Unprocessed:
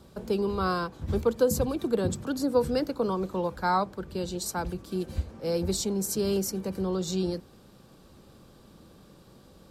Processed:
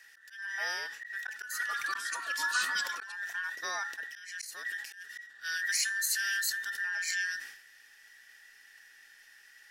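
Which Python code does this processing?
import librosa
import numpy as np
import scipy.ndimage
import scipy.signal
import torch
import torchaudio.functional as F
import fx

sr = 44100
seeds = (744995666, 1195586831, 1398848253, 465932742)

y = fx.band_invert(x, sr, width_hz=2000)
y = fx.echo_pitch(y, sr, ms=364, semitones=-4, count=2, db_per_echo=-3.0, at=(0.99, 3.12))
y = fx.high_shelf_res(y, sr, hz=1700.0, db=13.5, q=1.5)
y = fx.comb_fb(y, sr, f0_hz=280.0, decay_s=0.34, harmonics='odd', damping=0.0, mix_pct=60)
y = fx.auto_swell(y, sr, attack_ms=292.0)
y = fx.sustainer(y, sr, db_per_s=76.0)
y = y * 10.0 ** (-5.0 / 20.0)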